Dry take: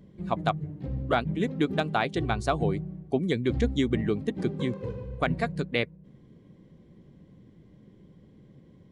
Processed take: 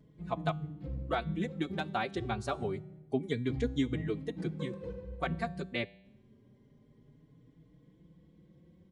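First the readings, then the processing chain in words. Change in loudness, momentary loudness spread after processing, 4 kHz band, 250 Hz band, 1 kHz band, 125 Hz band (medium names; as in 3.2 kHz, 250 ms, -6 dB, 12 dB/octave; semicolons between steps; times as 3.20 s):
-7.0 dB, 7 LU, -7.0 dB, -7.0 dB, -7.0 dB, -7.0 dB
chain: feedback comb 54 Hz, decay 0.78 s, harmonics odd, mix 40%; endless flanger 4.3 ms +0.27 Hz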